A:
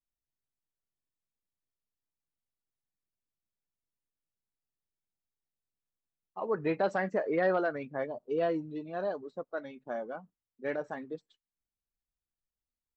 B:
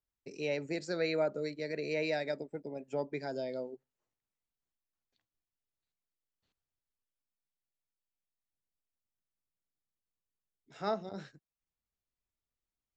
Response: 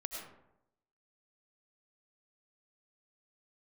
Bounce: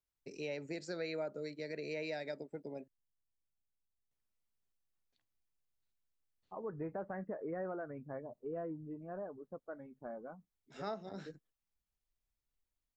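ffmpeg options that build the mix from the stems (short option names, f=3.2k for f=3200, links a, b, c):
-filter_complex "[0:a]lowpass=f=1.8k:w=0.5412,lowpass=f=1.8k:w=1.3066,aemphasis=mode=reproduction:type=bsi,adelay=150,volume=-9.5dB[a];[1:a]volume=-2dB,asplit=3[b][c][d];[b]atrim=end=2.88,asetpts=PTS-STARTPTS,afade=t=out:st=2.876:d=0.004:c=hsin[e];[c]atrim=start=2.88:end=4.11,asetpts=PTS-STARTPTS,volume=0[f];[d]atrim=start=4.11,asetpts=PTS-STARTPTS,afade=t=in:d=0.004:c=hsin[g];[e][f][g]concat=n=3:v=0:a=1,asplit=2[h][i];[i]apad=whole_len=578554[j];[a][j]sidechaincompress=threshold=-54dB:ratio=8:attack=16:release=103[k];[k][h]amix=inputs=2:normalize=0,acompressor=threshold=-41dB:ratio=2"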